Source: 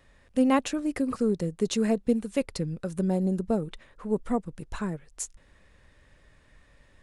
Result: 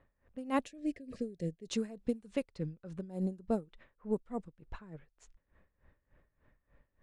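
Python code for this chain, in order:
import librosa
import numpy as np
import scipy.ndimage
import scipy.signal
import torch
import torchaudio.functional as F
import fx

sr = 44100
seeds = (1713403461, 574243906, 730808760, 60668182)

y = fx.env_lowpass(x, sr, base_hz=1500.0, full_db=-20.5)
y = fx.spec_box(y, sr, start_s=0.66, length_s=1.01, low_hz=710.0, high_hz=1600.0, gain_db=-18)
y = y * 10.0 ** (-19 * (0.5 - 0.5 * np.cos(2.0 * np.pi * 3.4 * np.arange(len(y)) / sr)) / 20.0)
y = F.gain(torch.from_numpy(y), -5.0).numpy()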